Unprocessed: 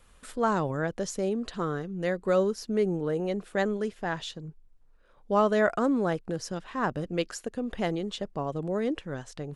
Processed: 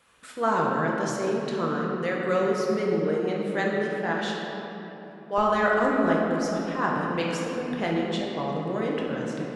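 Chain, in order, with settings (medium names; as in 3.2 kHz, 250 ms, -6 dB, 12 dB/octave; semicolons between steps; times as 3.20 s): high-pass 130 Hz 12 dB/octave, from 4.14 s 450 Hz, from 5.38 s 87 Hz; peaking EQ 2 kHz +5.5 dB 2.5 oct; simulated room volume 220 m³, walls hard, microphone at 0.7 m; trim -3.5 dB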